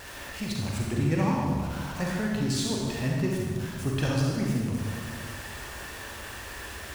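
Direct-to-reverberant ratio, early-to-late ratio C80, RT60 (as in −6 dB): −3.0 dB, 1.0 dB, 1.6 s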